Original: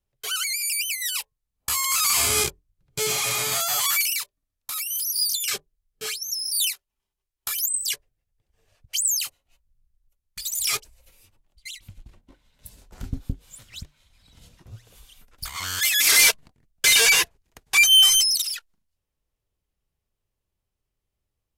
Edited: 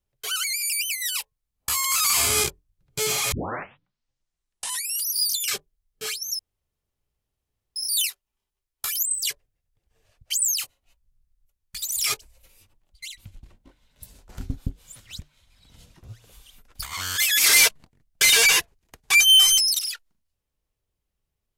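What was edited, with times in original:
3.32 tape start 1.77 s
6.39 insert room tone 1.37 s

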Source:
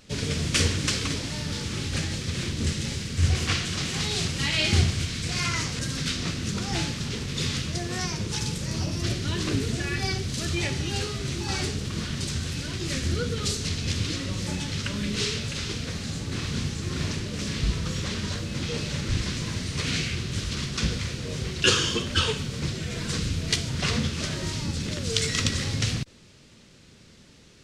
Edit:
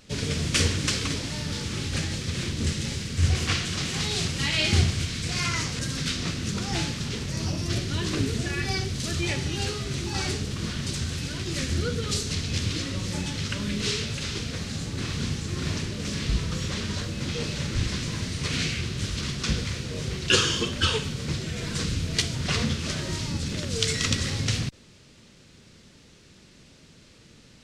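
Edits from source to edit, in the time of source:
7.29–8.63 cut

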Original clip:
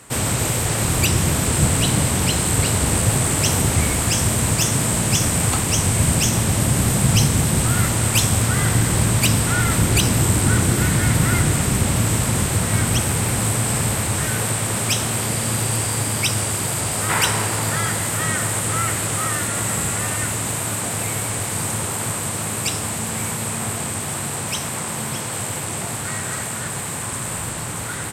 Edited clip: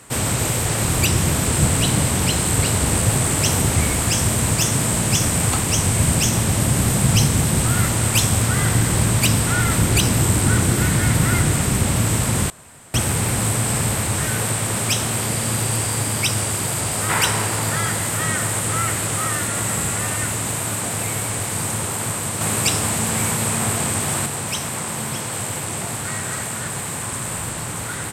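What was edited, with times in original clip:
12.5–12.94 room tone
22.41–24.26 gain +4 dB

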